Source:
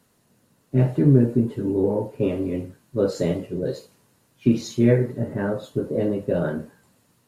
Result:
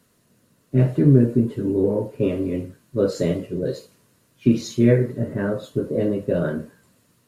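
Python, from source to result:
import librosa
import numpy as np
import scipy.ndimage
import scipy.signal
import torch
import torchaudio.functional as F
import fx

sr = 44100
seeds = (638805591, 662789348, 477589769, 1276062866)

y = fx.peak_eq(x, sr, hz=820.0, db=-11.0, octaves=0.23)
y = F.gain(torch.from_numpy(y), 1.5).numpy()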